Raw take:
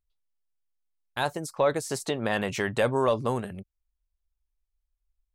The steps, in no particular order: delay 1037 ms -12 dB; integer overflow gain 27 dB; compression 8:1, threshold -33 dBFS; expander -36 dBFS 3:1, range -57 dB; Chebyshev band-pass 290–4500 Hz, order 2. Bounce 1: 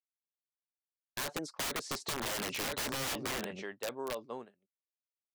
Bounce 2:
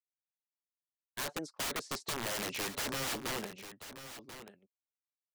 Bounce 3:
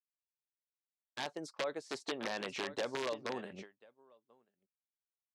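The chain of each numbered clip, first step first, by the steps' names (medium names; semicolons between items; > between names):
delay > expander > Chebyshev band-pass > integer overflow > compression; Chebyshev band-pass > integer overflow > compression > expander > delay; compression > delay > integer overflow > expander > Chebyshev band-pass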